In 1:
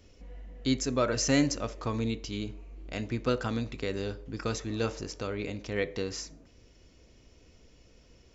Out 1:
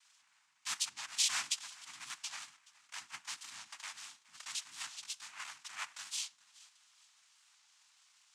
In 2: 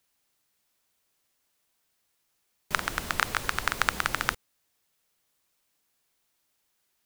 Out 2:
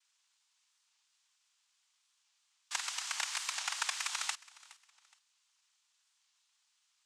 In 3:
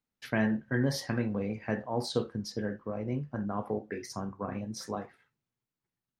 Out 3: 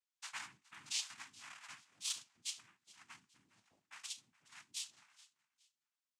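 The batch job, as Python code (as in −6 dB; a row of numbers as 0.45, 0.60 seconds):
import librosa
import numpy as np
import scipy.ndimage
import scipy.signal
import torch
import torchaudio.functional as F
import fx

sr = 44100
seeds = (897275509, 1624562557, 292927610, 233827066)

y = scipy.signal.sosfilt(scipy.signal.ellip(4, 1.0, 40, 2200.0, 'highpass', fs=sr, output='sos'), x)
y = fx.noise_vocoder(y, sr, seeds[0], bands=4)
y = fx.echo_feedback(y, sr, ms=418, feedback_pct=33, wet_db=-21.0)
y = fx.record_warp(y, sr, rpm=45.0, depth_cents=100.0)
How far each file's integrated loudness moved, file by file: −8.0, −7.0, −11.0 LU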